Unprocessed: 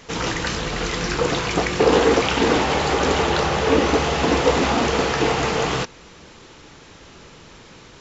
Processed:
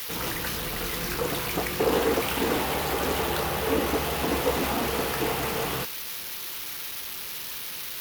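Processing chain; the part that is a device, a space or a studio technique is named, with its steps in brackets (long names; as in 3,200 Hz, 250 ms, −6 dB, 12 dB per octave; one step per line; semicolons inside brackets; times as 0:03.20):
budget class-D amplifier (gap after every zero crossing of 0.077 ms; spike at every zero crossing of −13 dBFS)
level −8 dB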